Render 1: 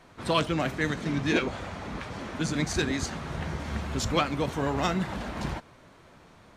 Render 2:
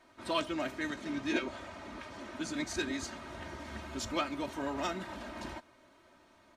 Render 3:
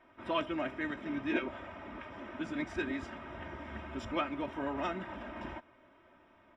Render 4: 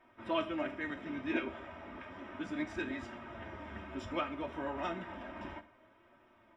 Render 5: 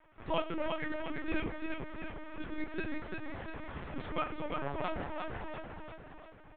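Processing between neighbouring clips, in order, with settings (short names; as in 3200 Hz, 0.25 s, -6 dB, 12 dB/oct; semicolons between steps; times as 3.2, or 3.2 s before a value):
low shelf 110 Hz -11 dB; comb 3.2 ms, depth 66%; gain -8.5 dB
polynomial smoothing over 25 samples
flange 0.32 Hz, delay 8.2 ms, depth 4.6 ms, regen +53%; Schroeder reverb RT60 0.47 s, combs from 27 ms, DRR 12.5 dB; gain +2 dB
feedback echo 0.347 s, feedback 53%, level -4 dB; LPC vocoder at 8 kHz pitch kept; gain +1 dB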